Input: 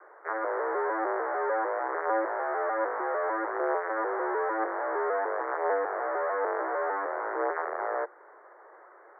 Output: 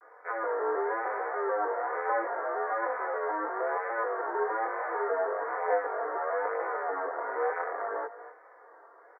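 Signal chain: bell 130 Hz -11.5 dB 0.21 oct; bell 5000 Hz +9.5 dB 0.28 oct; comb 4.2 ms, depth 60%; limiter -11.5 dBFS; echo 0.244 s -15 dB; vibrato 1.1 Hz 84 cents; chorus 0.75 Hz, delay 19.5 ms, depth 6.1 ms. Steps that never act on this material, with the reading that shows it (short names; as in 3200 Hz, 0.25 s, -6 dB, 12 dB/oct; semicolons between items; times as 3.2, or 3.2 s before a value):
bell 130 Hz: input band starts at 290 Hz; bell 5000 Hz: input band ends at 2200 Hz; limiter -11.5 dBFS: input peak -14.5 dBFS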